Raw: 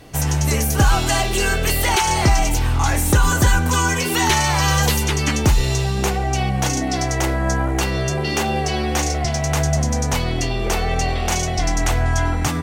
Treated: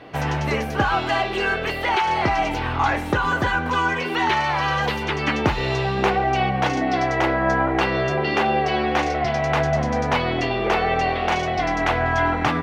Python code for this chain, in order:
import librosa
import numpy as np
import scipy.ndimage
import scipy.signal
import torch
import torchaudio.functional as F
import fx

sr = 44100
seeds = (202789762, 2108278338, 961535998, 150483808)

y = fx.highpass(x, sr, hz=510.0, slope=6)
y = fx.rider(y, sr, range_db=3, speed_s=0.5)
y = fx.air_absorb(y, sr, metres=370.0)
y = y * librosa.db_to_amplitude(5.0)